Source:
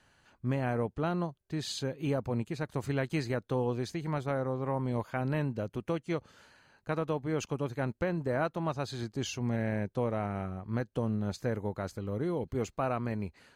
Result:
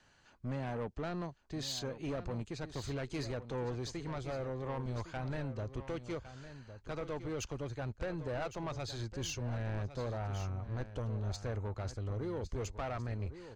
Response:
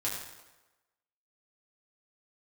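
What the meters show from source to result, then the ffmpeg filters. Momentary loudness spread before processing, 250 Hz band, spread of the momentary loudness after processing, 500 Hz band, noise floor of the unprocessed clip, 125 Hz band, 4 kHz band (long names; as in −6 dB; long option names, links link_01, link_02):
5 LU, −8.5 dB, 4 LU, −7.0 dB, −70 dBFS, −4.0 dB, −1.5 dB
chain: -filter_complex "[0:a]lowpass=frequency=7100:width=0.5412,lowpass=frequency=7100:width=1.3066,asubboost=boost=11:cutoff=54,acrossover=split=190|5100[link_01][link_02][link_03];[link_03]acontrast=36[link_04];[link_01][link_02][link_04]amix=inputs=3:normalize=0,asoftclip=type=tanh:threshold=-31.5dB,aecho=1:1:1108:0.251,volume=-1.5dB"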